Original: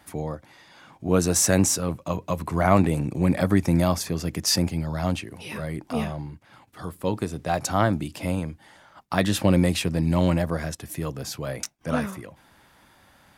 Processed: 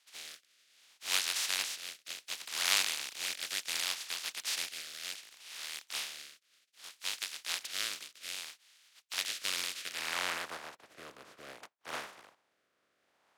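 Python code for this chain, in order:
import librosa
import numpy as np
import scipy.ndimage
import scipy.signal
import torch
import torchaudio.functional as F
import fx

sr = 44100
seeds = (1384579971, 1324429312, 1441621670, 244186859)

y = fx.spec_flatten(x, sr, power=0.12)
y = fx.filter_sweep_bandpass(y, sr, from_hz=3400.0, to_hz=890.0, start_s=9.75, end_s=10.48, q=0.84)
y = fx.rotary(y, sr, hz=0.65)
y = y * 10.0 ** (-5.5 / 20.0)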